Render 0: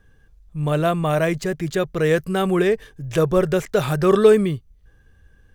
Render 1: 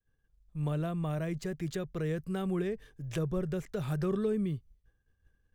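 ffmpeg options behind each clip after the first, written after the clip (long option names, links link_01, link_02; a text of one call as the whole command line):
ffmpeg -i in.wav -filter_complex "[0:a]acrossover=split=280[link_01][link_02];[link_02]acompressor=threshold=-30dB:ratio=4[link_03];[link_01][link_03]amix=inputs=2:normalize=0,agate=range=-33dB:threshold=-43dB:ratio=3:detection=peak,volume=-9dB" out.wav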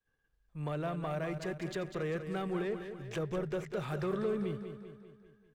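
ffmpeg -i in.wav -filter_complex "[0:a]asplit=2[link_01][link_02];[link_02]highpass=frequency=720:poles=1,volume=15dB,asoftclip=type=tanh:threshold=-21dB[link_03];[link_01][link_03]amix=inputs=2:normalize=0,lowpass=frequency=2400:poles=1,volume=-6dB,aecho=1:1:197|394|591|788|985|1182:0.355|0.185|0.0959|0.0499|0.0259|0.0135,volume=-4dB" out.wav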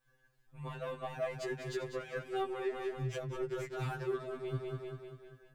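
ffmpeg -i in.wav -af "areverse,acompressor=threshold=-43dB:ratio=5,areverse,afftfilt=real='re*2.45*eq(mod(b,6),0)':imag='im*2.45*eq(mod(b,6),0)':win_size=2048:overlap=0.75,volume=10.5dB" out.wav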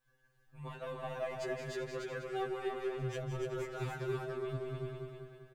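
ffmpeg -i in.wav -af "aecho=1:1:166.2|288.6:0.355|0.631,volume=-2dB" out.wav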